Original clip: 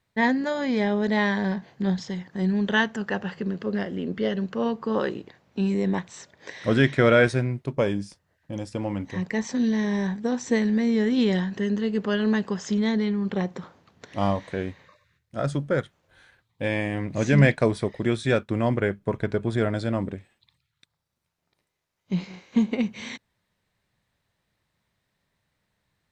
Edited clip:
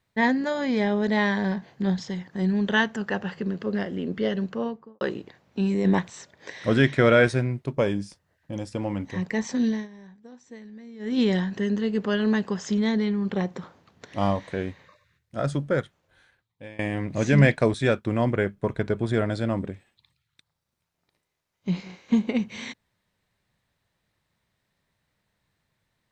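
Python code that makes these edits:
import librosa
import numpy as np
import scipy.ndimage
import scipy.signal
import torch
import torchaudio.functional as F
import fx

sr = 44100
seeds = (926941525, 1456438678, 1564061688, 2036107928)

y = fx.studio_fade_out(x, sr, start_s=4.42, length_s=0.59)
y = fx.edit(y, sr, fx.clip_gain(start_s=5.85, length_s=0.25, db=4.5),
    fx.fade_down_up(start_s=9.67, length_s=1.53, db=-21.0, fade_s=0.21),
    fx.fade_out_to(start_s=15.75, length_s=1.04, floor_db=-23.0),
    fx.cut(start_s=17.74, length_s=0.44), tone=tone)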